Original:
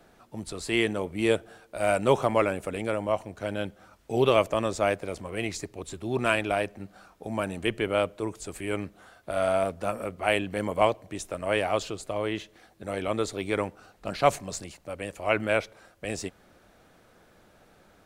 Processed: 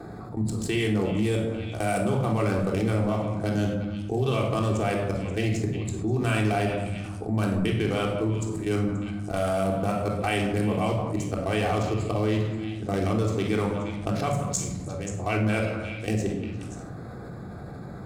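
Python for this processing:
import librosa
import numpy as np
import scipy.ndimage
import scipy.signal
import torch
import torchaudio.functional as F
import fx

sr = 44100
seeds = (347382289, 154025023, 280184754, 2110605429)

p1 = fx.wiener(x, sr, points=15)
p2 = scipy.signal.sosfilt(scipy.signal.butter(2, 78.0, 'highpass', fs=sr, output='sos'), p1)
p3 = fx.bass_treble(p2, sr, bass_db=10, treble_db=11)
p4 = fx.hum_notches(p3, sr, base_hz=50, count=3)
p5 = fx.level_steps(p4, sr, step_db=15)
p6 = p5 + fx.echo_stepped(p5, sr, ms=177, hz=1100.0, octaves=1.4, feedback_pct=70, wet_db=-10.0, dry=0)
p7 = fx.room_shoebox(p6, sr, seeds[0], volume_m3=1900.0, walls='furnished', distance_m=3.6)
p8 = fx.env_flatten(p7, sr, amount_pct=50)
y = F.gain(torch.from_numpy(p8), -1.5).numpy()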